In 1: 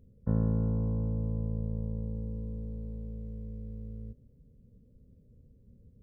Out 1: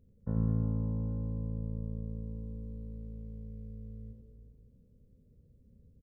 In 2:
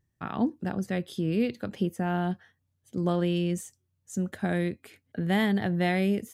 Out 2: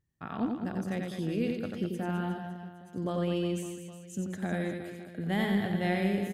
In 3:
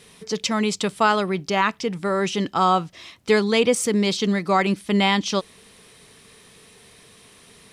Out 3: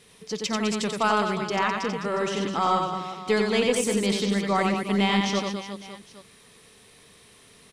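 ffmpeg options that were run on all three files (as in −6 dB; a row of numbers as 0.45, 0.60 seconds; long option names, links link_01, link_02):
-af "aecho=1:1:90|207|359.1|556.8|813.9:0.631|0.398|0.251|0.158|0.1,aeval=exprs='0.75*(cos(1*acos(clip(val(0)/0.75,-1,1)))-cos(1*PI/2))+0.0668*(cos(2*acos(clip(val(0)/0.75,-1,1)))-cos(2*PI/2))':channel_layout=same,volume=-5.5dB"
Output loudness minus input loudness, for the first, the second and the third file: −2.5, −4.0, −3.5 LU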